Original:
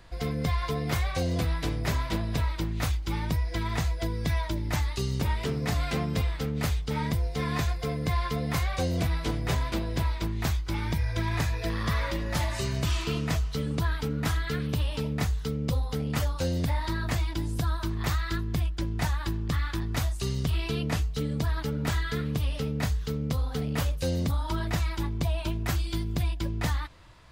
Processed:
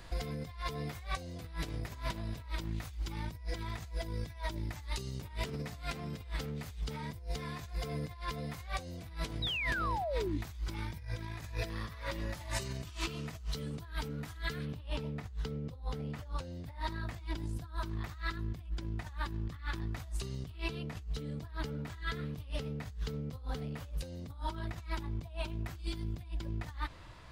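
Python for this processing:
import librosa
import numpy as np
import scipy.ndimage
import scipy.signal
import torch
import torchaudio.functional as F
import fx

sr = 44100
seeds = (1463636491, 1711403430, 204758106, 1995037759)

y = fx.high_shelf(x, sr, hz=4900.0, db=fx.steps((0.0, 4.0), (14.64, -9.5), (16.65, -4.0)))
y = fx.over_compress(y, sr, threshold_db=-33.0, ratio=-0.5)
y = fx.spec_paint(y, sr, seeds[0], shape='fall', start_s=9.42, length_s=0.96, low_hz=270.0, high_hz=4000.0, level_db=-31.0)
y = F.gain(torch.from_numpy(y), -4.5).numpy()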